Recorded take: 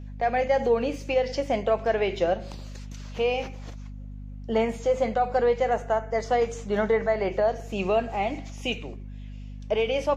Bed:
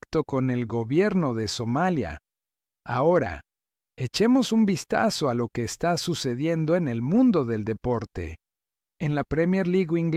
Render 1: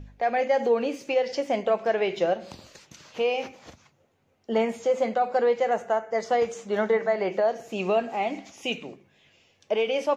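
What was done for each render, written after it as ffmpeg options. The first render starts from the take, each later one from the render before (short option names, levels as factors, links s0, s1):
-af "bandreject=f=50:t=h:w=4,bandreject=f=100:t=h:w=4,bandreject=f=150:t=h:w=4,bandreject=f=200:t=h:w=4,bandreject=f=250:t=h:w=4"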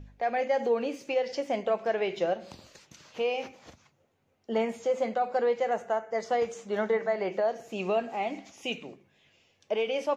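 -af "volume=0.631"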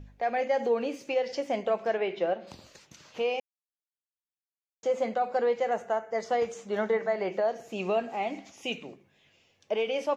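-filter_complex "[0:a]asplit=3[s0][s1][s2];[s0]afade=t=out:st=1.97:d=0.02[s3];[s1]highpass=180,lowpass=3300,afade=t=in:st=1.97:d=0.02,afade=t=out:st=2.46:d=0.02[s4];[s2]afade=t=in:st=2.46:d=0.02[s5];[s3][s4][s5]amix=inputs=3:normalize=0,asplit=3[s6][s7][s8];[s6]atrim=end=3.4,asetpts=PTS-STARTPTS,afade=t=out:st=3.396:d=0.004:c=hsin[s9];[s7]atrim=start=3.4:end=4.83,asetpts=PTS-STARTPTS,volume=0[s10];[s8]atrim=start=4.83,asetpts=PTS-STARTPTS,afade=t=in:d=0.004:c=hsin[s11];[s9][s10][s11]concat=n=3:v=0:a=1"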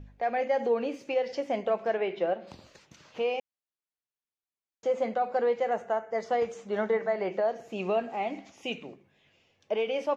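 -af "highshelf=f=5400:g=-9.5"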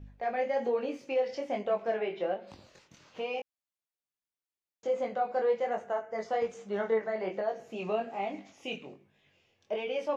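-af "flanger=delay=19.5:depth=3.9:speed=1.2"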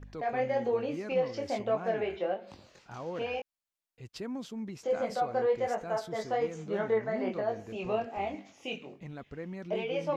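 -filter_complex "[1:a]volume=0.126[s0];[0:a][s0]amix=inputs=2:normalize=0"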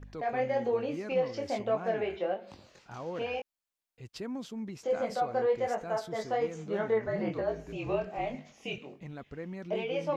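-filter_complex "[0:a]asettb=1/sr,asplit=3[s0][s1][s2];[s0]atrim=end=7.064[s3];[s1]atrim=start=7.06:end=8.78,asetpts=PTS-STARTPTS,afade=t=in:d=0.004:c=qsin,afade=t=out:st=1.716:d=0.004:c=qsin,afreqshift=-49[s4];[s2]atrim=start=8.776[s5];[s3][s4]acrossfade=d=0.004:c1=hsin:c2=qsin[s6];[s6][s5]acrossfade=d=0.004:c1=qsin:c2=hsin"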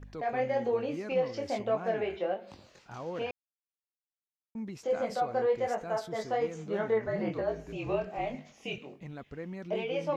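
-filter_complex "[0:a]asplit=3[s0][s1][s2];[s0]atrim=end=3.31,asetpts=PTS-STARTPTS,afade=t=out:st=3.306:d=0.004:c=hsin[s3];[s1]atrim=start=3.31:end=4.55,asetpts=PTS-STARTPTS,volume=0[s4];[s2]atrim=start=4.55,asetpts=PTS-STARTPTS,afade=t=in:d=0.004:c=hsin[s5];[s3][s4][s5]concat=n=3:v=0:a=1"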